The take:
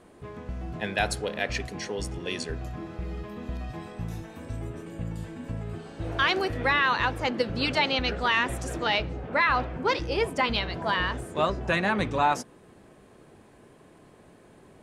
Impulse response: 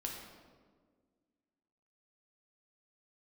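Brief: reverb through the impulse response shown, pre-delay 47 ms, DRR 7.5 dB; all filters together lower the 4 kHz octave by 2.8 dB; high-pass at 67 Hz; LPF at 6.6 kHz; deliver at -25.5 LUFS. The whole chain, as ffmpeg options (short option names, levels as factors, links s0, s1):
-filter_complex "[0:a]highpass=67,lowpass=6600,equalizer=f=4000:t=o:g=-3.5,asplit=2[s0][s1];[1:a]atrim=start_sample=2205,adelay=47[s2];[s1][s2]afir=irnorm=-1:irlink=0,volume=0.422[s3];[s0][s3]amix=inputs=2:normalize=0,volume=1.33"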